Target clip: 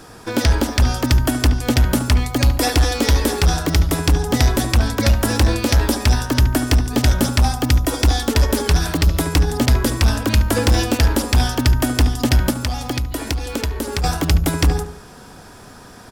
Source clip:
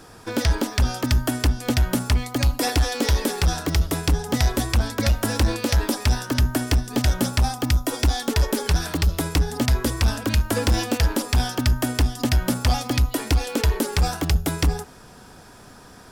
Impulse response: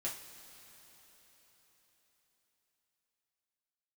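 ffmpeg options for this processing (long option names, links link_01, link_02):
-filter_complex "[0:a]asplit=2[link_01][link_02];[link_02]adelay=72,lowpass=frequency=1700:poles=1,volume=-9dB,asplit=2[link_03][link_04];[link_04]adelay=72,lowpass=frequency=1700:poles=1,volume=0.41,asplit=2[link_05][link_06];[link_06]adelay=72,lowpass=frequency=1700:poles=1,volume=0.41,asplit=2[link_07][link_08];[link_08]adelay=72,lowpass=frequency=1700:poles=1,volume=0.41,asplit=2[link_09][link_10];[link_10]adelay=72,lowpass=frequency=1700:poles=1,volume=0.41[link_11];[link_01][link_03][link_05][link_07][link_09][link_11]amix=inputs=6:normalize=0,asettb=1/sr,asplit=3[link_12][link_13][link_14];[link_12]atrim=end=12.504[link_15];[link_13]atrim=start=12.5:end=14.04,asetpts=PTS-STARTPTS,afade=type=in:duration=0.004:curve=qsin,afade=type=out:start_time=1.536:duration=0.004:curve=qsin,acompressor=threshold=-24dB:ratio=6[link_16];[link_14]atrim=start=14.036[link_17];[link_15][link_16]acrossfade=duration=0.004:curve1=hsin:curve2=qsin[link_18];[link_18][link_17]acrossfade=duration=0.004:curve1=qsin:curve2=hsin,volume=4.5dB"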